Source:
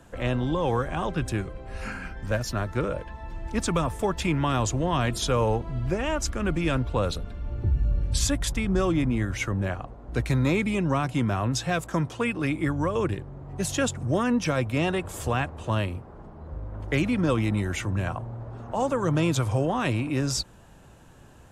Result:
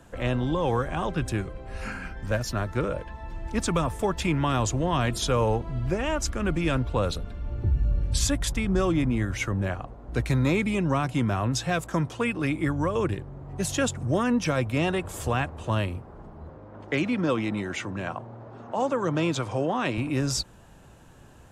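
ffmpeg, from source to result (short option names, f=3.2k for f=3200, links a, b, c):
-filter_complex "[0:a]asettb=1/sr,asplit=3[a][b][c];[a]atrim=end=16.494[d];[b]atrim=start=16.49:end=19.98,asetpts=PTS-STARTPTS,afade=t=in:d=0.004:c=qsin,afade=t=out:st=3.486:d=0.004:c=qsin,highpass=180,lowpass=6.4k[e];[c]atrim=start=19.976[f];[d][e]acrossfade=d=0.004:c1=hsin:c2=qsin[g];[g][f]acrossfade=d=0.004:c1=qsin:c2=hsin"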